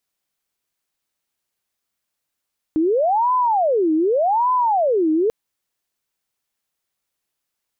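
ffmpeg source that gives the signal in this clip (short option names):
-f lavfi -i "aevalsrc='0.188*sin(2*PI*(660.5*t-349.5/(2*PI*0.85)*sin(2*PI*0.85*t)))':d=2.54:s=44100"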